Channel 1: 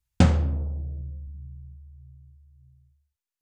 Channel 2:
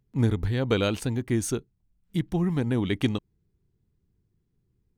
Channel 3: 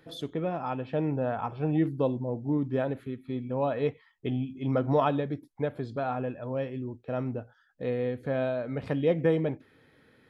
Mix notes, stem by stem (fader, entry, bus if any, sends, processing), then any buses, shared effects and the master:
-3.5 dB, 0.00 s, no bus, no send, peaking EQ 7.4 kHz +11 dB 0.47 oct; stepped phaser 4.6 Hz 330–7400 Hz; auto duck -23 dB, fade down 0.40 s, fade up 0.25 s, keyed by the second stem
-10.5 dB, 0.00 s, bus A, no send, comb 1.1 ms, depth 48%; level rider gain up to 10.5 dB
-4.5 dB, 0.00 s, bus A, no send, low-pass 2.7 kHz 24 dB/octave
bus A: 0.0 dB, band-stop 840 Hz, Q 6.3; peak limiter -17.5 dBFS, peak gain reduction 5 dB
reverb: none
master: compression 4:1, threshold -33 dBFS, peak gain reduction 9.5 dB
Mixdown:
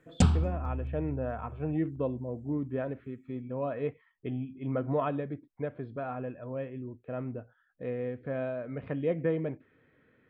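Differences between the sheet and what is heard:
stem 2: muted; master: missing compression 4:1, threshold -33 dBFS, peak gain reduction 9.5 dB

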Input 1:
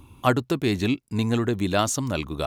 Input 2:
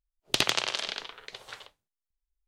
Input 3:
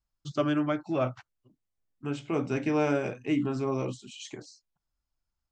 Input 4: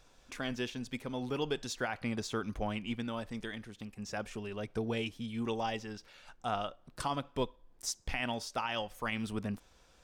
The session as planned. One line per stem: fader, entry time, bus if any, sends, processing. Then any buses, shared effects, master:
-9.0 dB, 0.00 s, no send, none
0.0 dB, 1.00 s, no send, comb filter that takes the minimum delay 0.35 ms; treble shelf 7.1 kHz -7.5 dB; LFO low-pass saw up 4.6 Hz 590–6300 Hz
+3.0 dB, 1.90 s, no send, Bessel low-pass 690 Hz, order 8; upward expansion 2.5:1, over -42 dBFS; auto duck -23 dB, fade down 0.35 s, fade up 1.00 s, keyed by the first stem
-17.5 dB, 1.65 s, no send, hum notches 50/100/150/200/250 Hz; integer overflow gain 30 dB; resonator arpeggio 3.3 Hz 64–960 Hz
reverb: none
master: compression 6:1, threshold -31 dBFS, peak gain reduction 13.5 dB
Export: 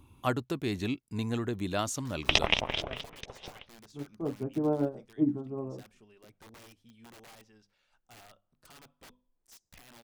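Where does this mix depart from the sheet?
stem 2: entry 1.00 s -> 1.95 s; stem 4: missing resonator arpeggio 3.3 Hz 64–960 Hz; master: missing compression 6:1, threshold -31 dBFS, peak gain reduction 13.5 dB

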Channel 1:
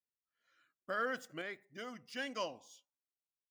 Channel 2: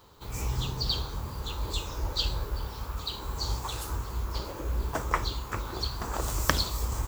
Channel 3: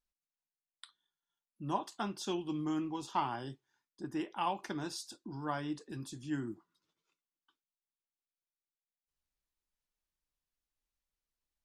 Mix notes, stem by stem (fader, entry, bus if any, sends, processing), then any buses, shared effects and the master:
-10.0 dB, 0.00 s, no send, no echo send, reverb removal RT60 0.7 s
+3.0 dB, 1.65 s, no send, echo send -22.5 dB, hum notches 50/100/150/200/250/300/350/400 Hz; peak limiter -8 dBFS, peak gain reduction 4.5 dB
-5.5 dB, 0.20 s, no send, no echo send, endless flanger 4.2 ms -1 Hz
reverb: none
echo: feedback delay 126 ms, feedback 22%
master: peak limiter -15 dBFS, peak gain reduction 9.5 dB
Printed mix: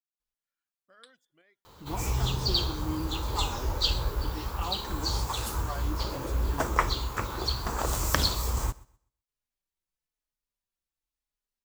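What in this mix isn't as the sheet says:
stem 1 -10.0 dB -> -21.5 dB; stem 3 -5.5 dB -> +1.0 dB; master: missing peak limiter -15 dBFS, peak gain reduction 9.5 dB

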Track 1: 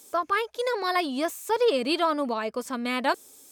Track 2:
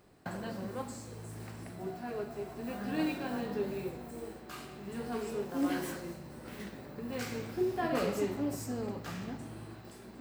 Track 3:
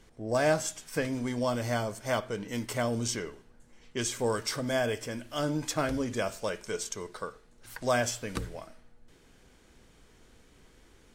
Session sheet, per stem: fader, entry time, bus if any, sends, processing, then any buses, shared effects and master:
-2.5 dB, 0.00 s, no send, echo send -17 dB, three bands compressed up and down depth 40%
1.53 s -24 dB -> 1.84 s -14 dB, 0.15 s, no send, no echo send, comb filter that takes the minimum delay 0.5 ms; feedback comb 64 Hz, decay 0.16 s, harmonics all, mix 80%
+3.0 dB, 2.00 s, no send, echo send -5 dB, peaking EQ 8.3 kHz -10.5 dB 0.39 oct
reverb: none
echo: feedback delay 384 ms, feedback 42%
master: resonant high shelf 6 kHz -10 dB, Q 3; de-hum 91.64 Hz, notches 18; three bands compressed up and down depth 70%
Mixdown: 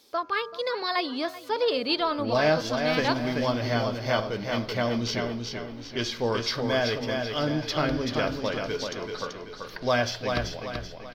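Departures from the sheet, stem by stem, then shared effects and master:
stem 1: missing three bands compressed up and down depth 40%; stem 2: missing feedback comb 64 Hz, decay 0.16 s, harmonics all, mix 80%; master: missing three bands compressed up and down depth 70%

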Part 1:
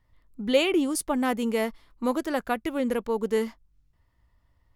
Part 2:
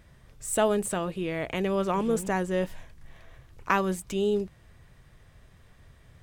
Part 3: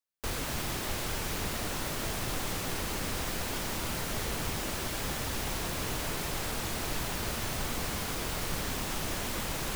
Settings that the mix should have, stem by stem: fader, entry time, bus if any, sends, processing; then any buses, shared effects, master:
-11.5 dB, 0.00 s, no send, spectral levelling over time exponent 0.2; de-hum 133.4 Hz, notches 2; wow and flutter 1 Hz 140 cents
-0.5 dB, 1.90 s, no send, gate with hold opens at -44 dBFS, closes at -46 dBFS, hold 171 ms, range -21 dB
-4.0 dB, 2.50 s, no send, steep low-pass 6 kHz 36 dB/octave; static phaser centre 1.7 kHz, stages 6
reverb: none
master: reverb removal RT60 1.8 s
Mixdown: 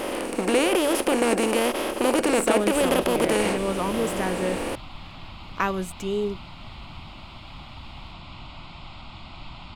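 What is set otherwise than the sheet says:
stem 1 -11.5 dB -> -4.0 dB; stem 2: missing gate with hold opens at -44 dBFS, closes at -46 dBFS, hold 171 ms, range -21 dB; master: missing reverb removal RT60 1.8 s

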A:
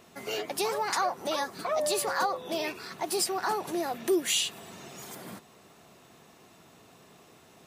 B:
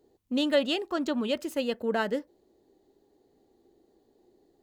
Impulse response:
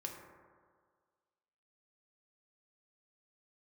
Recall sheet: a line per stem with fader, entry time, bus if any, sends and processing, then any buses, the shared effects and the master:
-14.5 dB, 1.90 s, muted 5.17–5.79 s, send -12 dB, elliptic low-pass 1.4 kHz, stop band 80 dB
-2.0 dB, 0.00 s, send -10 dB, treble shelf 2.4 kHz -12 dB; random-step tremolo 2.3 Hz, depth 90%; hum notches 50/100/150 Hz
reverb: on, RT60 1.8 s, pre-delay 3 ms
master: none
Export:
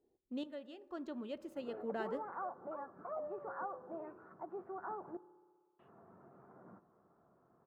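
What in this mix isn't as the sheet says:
stem A: entry 1.90 s -> 1.40 s; stem B -2.0 dB -> -13.0 dB

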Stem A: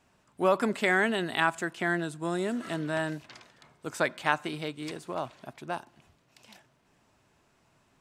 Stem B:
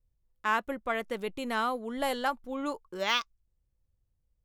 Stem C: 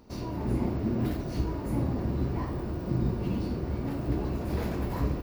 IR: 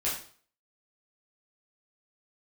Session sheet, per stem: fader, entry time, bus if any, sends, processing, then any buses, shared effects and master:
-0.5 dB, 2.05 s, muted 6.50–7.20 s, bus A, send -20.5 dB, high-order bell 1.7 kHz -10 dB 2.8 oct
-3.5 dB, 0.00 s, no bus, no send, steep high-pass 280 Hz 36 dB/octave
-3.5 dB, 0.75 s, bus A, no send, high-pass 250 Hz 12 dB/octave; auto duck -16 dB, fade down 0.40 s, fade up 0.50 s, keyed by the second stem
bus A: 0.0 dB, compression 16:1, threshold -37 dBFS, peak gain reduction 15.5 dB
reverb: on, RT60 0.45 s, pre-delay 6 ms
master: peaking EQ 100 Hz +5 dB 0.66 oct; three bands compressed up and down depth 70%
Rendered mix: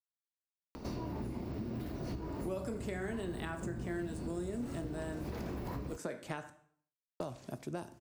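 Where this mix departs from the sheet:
stem B: muted; stem C: missing high-pass 250 Hz 12 dB/octave; master: missing peaking EQ 100 Hz +5 dB 0.66 oct

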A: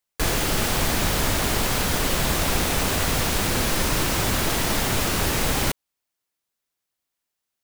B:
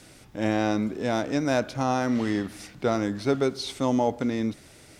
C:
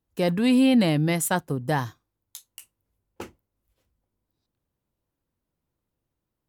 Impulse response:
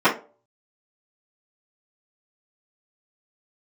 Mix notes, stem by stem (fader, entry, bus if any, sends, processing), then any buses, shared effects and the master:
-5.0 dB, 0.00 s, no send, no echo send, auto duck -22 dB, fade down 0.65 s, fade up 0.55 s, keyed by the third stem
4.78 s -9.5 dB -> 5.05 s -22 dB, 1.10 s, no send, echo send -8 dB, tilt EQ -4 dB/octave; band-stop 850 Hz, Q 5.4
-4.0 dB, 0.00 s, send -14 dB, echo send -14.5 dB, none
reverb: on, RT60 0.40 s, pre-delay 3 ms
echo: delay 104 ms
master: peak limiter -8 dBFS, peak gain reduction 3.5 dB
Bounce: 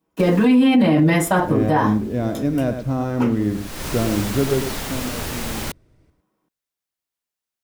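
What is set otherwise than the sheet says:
stem B -9.5 dB -> -2.5 dB; stem C: send -14 dB -> -5 dB

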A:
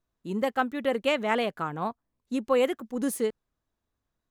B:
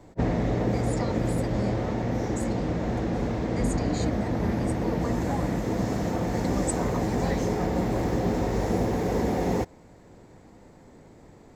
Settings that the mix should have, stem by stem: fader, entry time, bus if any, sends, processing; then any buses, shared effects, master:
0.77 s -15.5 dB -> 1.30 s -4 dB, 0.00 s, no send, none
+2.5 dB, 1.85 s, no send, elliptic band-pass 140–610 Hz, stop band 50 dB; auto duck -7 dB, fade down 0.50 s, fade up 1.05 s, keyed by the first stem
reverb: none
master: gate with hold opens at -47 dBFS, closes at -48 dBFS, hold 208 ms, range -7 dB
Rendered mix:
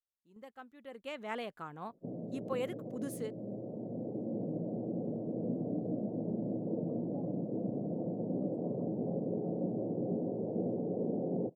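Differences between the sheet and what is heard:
stem A -15.5 dB -> -24.5 dB; stem B +2.5 dB -> -7.5 dB

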